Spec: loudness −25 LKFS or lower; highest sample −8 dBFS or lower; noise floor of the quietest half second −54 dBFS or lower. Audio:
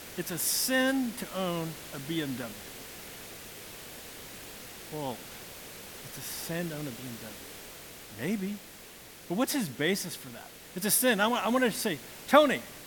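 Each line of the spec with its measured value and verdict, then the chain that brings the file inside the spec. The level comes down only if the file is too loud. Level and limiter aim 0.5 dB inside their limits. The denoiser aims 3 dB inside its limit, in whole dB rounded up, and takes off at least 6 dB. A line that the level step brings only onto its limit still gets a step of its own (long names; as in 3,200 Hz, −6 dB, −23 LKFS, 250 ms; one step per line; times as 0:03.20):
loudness −30.0 LKFS: in spec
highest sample −7.5 dBFS: out of spec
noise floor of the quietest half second −49 dBFS: out of spec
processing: broadband denoise 8 dB, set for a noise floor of −49 dBFS
brickwall limiter −8.5 dBFS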